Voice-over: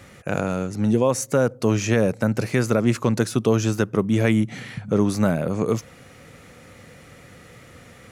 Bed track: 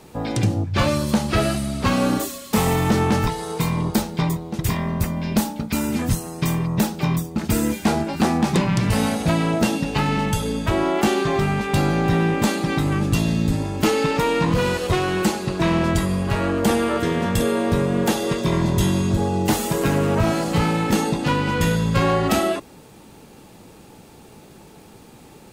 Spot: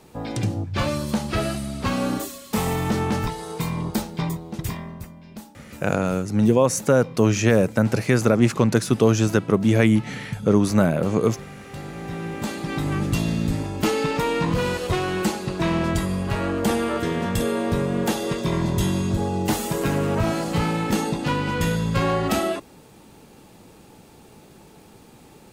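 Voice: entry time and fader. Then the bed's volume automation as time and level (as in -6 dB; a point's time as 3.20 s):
5.55 s, +2.0 dB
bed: 4.60 s -4.5 dB
5.21 s -19.5 dB
11.60 s -19.5 dB
12.93 s -3 dB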